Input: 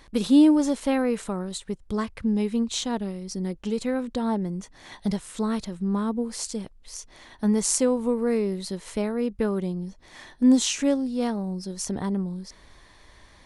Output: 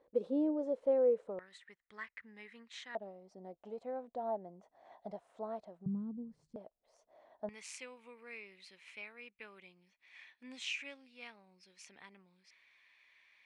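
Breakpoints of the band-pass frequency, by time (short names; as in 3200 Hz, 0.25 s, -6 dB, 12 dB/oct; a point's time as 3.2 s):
band-pass, Q 6.5
510 Hz
from 1.39 s 1900 Hz
from 2.95 s 680 Hz
from 5.86 s 150 Hz
from 6.56 s 640 Hz
from 7.49 s 2400 Hz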